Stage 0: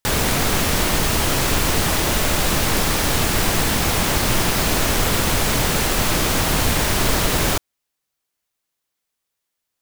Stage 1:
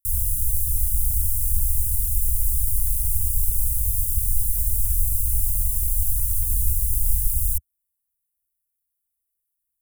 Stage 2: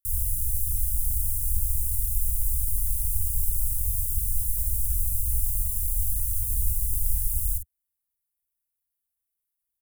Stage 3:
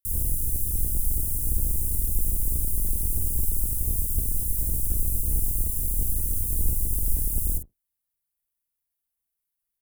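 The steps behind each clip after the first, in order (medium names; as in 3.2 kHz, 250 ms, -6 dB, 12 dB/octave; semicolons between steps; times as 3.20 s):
inverse Chebyshev band-stop 380–2300 Hz, stop band 80 dB; trim +2.5 dB
doubling 48 ms -9.5 dB; trim -4.5 dB
octave divider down 1 oct, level -2 dB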